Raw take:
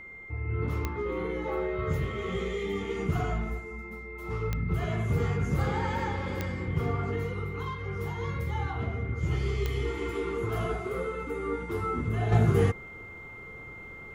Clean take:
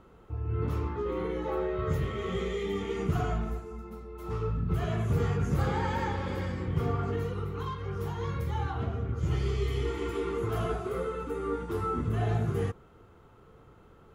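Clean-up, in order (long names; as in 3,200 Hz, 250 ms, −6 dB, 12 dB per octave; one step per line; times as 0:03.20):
click removal
notch filter 2,100 Hz, Q 30
level correction −7 dB, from 0:12.32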